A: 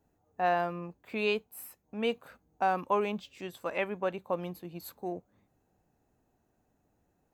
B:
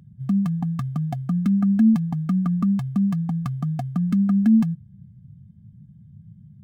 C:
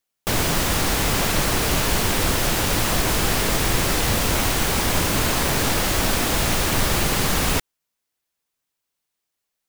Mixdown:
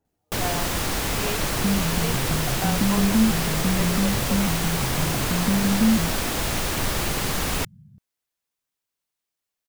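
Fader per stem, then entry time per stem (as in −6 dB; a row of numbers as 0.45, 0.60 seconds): −4.0, −3.0, −4.5 decibels; 0.00, 1.35, 0.05 seconds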